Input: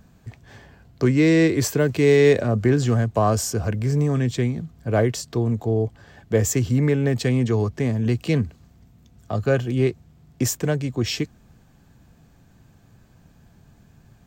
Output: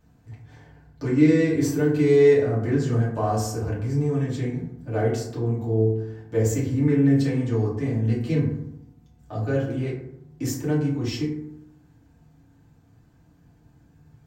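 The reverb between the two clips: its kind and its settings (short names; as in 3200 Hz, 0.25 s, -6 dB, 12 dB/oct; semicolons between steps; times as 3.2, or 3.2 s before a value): FDN reverb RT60 0.8 s, low-frequency decay 1.25×, high-frequency decay 0.4×, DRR -8 dB; gain -14 dB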